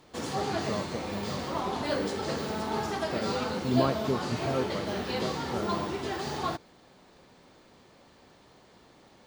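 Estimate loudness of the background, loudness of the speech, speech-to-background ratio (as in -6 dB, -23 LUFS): -32.5 LUFS, -35.5 LUFS, -3.0 dB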